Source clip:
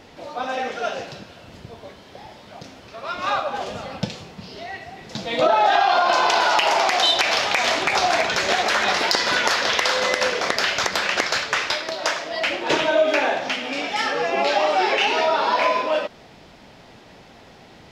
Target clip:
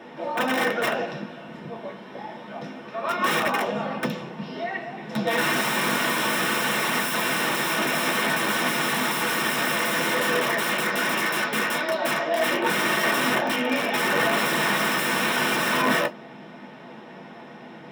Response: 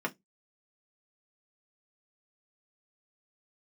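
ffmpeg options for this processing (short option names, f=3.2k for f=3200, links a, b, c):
-filter_complex "[0:a]equalizer=f=830:w=4.3:g=2.5,aeval=exprs='(mod(8.91*val(0)+1,2)-1)/8.91':c=same[a];[1:a]atrim=start_sample=2205[b];[a][b]afir=irnorm=-1:irlink=0,volume=-2.5dB"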